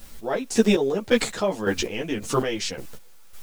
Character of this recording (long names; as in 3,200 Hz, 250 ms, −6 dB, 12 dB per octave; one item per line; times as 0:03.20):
a quantiser's noise floor 10 bits, dither triangular
chopped level 1.8 Hz, depth 65%, duty 35%
a shimmering, thickened sound